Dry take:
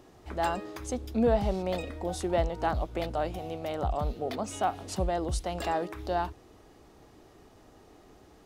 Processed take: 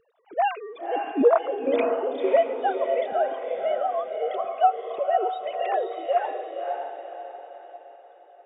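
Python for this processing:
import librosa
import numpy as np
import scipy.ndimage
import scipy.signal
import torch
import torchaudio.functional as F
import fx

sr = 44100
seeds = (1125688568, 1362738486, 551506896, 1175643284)

y = fx.sine_speech(x, sr)
y = fx.noise_reduce_blind(y, sr, reduce_db=12)
y = fx.echo_diffused(y, sr, ms=548, feedback_pct=43, wet_db=-4.5)
y = y * librosa.db_to_amplitude(5.0)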